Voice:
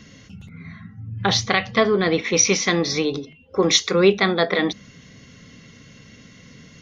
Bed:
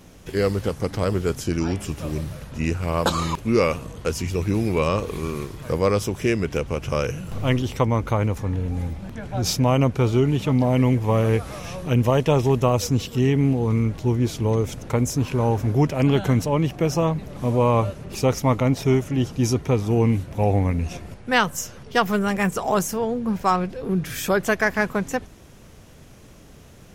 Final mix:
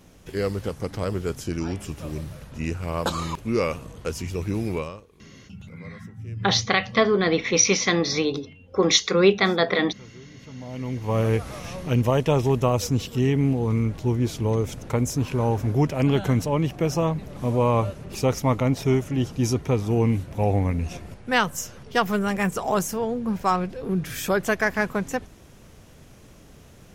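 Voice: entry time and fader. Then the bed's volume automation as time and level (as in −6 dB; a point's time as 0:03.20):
5.20 s, −1.5 dB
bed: 0:04.75 −4.5 dB
0:05.09 −27.5 dB
0:10.34 −27.5 dB
0:11.20 −2 dB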